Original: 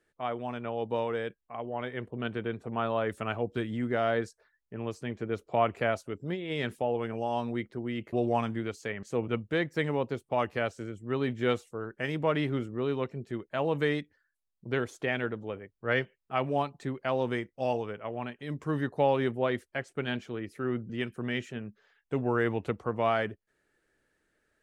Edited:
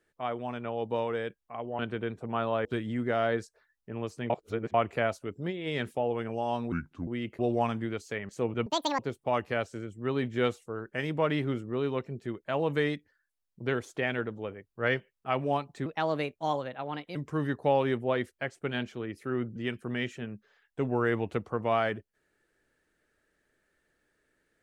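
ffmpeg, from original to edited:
-filter_complex "[0:a]asplit=11[a][b][c][d][e][f][g][h][i][j][k];[a]atrim=end=1.792[l];[b]atrim=start=2.218:end=3.082[m];[c]atrim=start=3.488:end=5.142[n];[d]atrim=start=5.138:end=5.582,asetpts=PTS-STARTPTS,areverse[o];[e]atrim=start=5.578:end=7.564[p];[f]atrim=start=7.56:end=7.81,asetpts=PTS-STARTPTS,asetrate=31311,aresample=44100,atrim=end_sample=15528,asetpts=PTS-STARTPTS[q];[g]atrim=start=7.806:end=9.404[r];[h]atrim=start=9.4:end=10.04,asetpts=PTS-STARTPTS,asetrate=86436,aresample=44100[s];[i]atrim=start=10.036:end=16.914[t];[j]atrim=start=16.91:end=18.49,asetpts=PTS-STARTPTS,asetrate=53802,aresample=44100,atrim=end_sample=57113,asetpts=PTS-STARTPTS[u];[k]atrim=start=18.486[v];[l][m]acrossfade=d=0.004:c1=hsin:c2=hsin[w];[w][n]acrossfade=d=0.004:c1=hsin:c2=hsin[x];[x][o]acrossfade=d=0.004:c1=hsin:c2=hsin[y];[y][p]acrossfade=d=0.004:c1=hsin:c2=hsin[z];[z][q]acrossfade=d=0.004:c1=hsin:c2=hsin[aa];[aa][r]acrossfade=d=0.004:c1=hsin:c2=hsin[ab];[ab][s]acrossfade=d=0.004:c1=hsin:c2=hsin[ac];[ac][t]acrossfade=d=0.004:c1=hsin:c2=hsin[ad];[ad][u]acrossfade=d=0.004:c1=hsin:c2=hsin[ae];[ae][v]acrossfade=d=0.004:c1=hsin:c2=hsin"

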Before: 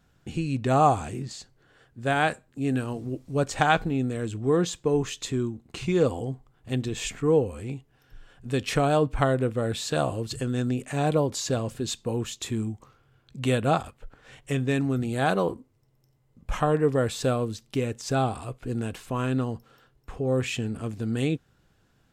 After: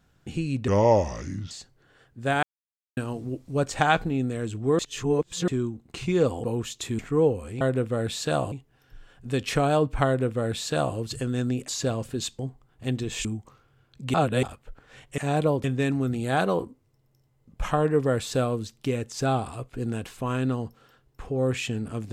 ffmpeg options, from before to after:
-filter_complex "[0:a]asplit=18[a][b][c][d][e][f][g][h][i][j][k][l][m][n][o][p][q][r];[a]atrim=end=0.684[s];[b]atrim=start=0.68:end=1.31,asetpts=PTS-STARTPTS,asetrate=33516,aresample=44100[t];[c]atrim=start=1.306:end=2.23,asetpts=PTS-STARTPTS,afade=t=out:st=0.92:d=0.004:c=hsin[u];[d]atrim=start=2.23:end=2.77,asetpts=PTS-STARTPTS,volume=0[v];[e]atrim=start=2.77:end=4.592,asetpts=PTS-STARTPTS,afade=t=in:d=0.004:c=hsin[w];[f]atrim=start=4.588:end=5.282,asetpts=PTS-STARTPTS,areverse[x];[g]atrim=start=5.278:end=6.242[y];[h]atrim=start=12.048:end=12.602[z];[i]atrim=start=7.098:end=7.722[aa];[j]atrim=start=9.258:end=10.172[ab];[k]atrim=start=7.718:end=10.882[ac];[l]atrim=start=11.338:end=12.052[ad];[m]atrim=start=6.238:end=7.102[ae];[n]atrim=start=12.598:end=13.492[af];[o]atrim=start=13.488:end=13.782,asetpts=PTS-STARTPTS,areverse[ag];[p]atrim=start=13.778:end=14.532[ah];[q]atrim=start=10.878:end=11.342[ai];[r]atrim=start=14.528[aj];[s][t]acrossfade=d=0.004:c1=hsin:c2=hsin[ak];[u][v][w]concat=n=3:v=0:a=1[al];[ak][al]acrossfade=d=0.004:c1=hsin:c2=hsin[am];[am][x]acrossfade=d=0.004:c1=hsin:c2=hsin[an];[an][y]acrossfade=d=0.004:c1=hsin:c2=hsin[ao];[ao][z]acrossfade=d=0.004:c1=hsin:c2=hsin[ap];[ap][aa]acrossfade=d=0.004:c1=hsin:c2=hsin[aq];[aq][ab]acrossfade=d=0.004:c1=hsin:c2=hsin[ar];[ar][ac]acrossfade=d=0.004:c1=hsin:c2=hsin[as];[as][ad]acrossfade=d=0.004:c1=hsin:c2=hsin[at];[at][ae]acrossfade=d=0.004:c1=hsin:c2=hsin[au];[au][af]acrossfade=d=0.004:c1=hsin:c2=hsin[av];[av][ag]acrossfade=d=0.004:c1=hsin:c2=hsin[aw];[aw][ah]acrossfade=d=0.004:c1=hsin:c2=hsin[ax];[ax][ai]acrossfade=d=0.004:c1=hsin:c2=hsin[ay];[ay][aj]acrossfade=d=0.004:c1=hsin:c2=hsin"

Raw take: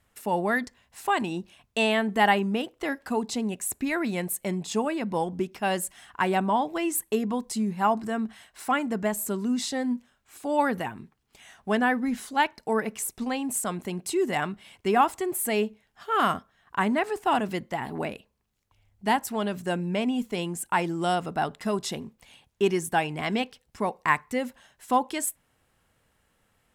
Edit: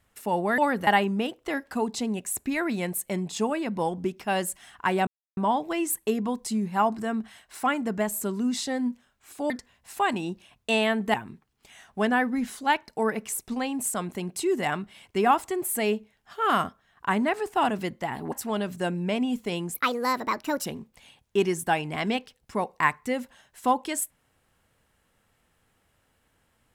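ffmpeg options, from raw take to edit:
-filter_complex "[0:a]asplit=9[a][b][c][d][e][f][g][h][i];[a]atrim=end=0.582[j];[b]atrim=start=10.548:end=10.842[k];[c]atrim=start=2.218:end=6.42,asetpts=PTS-STARTPTS,afade=t=out:st=4.198:d=0.004:c=hsin,apad=pad_dur=0.3[l];[d]atrim=start=6.42:end=10.552,asetpts=PTS-STARTPTS,afade=t=in:d=0.004:c=hsin[m];[e]atrim=start=0.578:end=2.222[n];[f]atrim=start=10.838:end=18.022[o];[g]atrim=start=19.178:end=20.604[p];[h]atrim=start=20.6:end=21.91,asetpts=PTS-STARTPTS,asetrate=63063,aresample=44100,atrim=end_sample=40399,asetpts=PTS-STARTPTS[q];[i]atrim=start=21.906[r];[j][k]acrossfade=d=0.004:c1=hsin:c2=hsin[s];[l][m]concat=n=2:v=0:a=1[t];[s][t]acrossfade=d=0.004:c1=hsin:c2=hsin[u];[u][n]acrossfade=d=0.004:c1=hsin:c2=hsin[v];[v][o]acrossfade=d=0.004:c1=hsin:c2=hsin[w];[w][p]acrossfade=d=0.004:c1=hsin:c2=hsin[x];[x][q]acrossfade=d=0.004:c1=hsin:c2=hsin[y];[y][r]acrossfade=d=0.004:c1=hsin:c2=hsin"

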